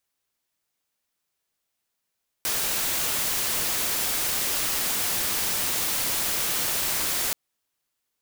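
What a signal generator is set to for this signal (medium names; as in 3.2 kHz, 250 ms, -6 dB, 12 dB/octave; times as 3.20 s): noise white, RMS -26 dBFS 4.88 s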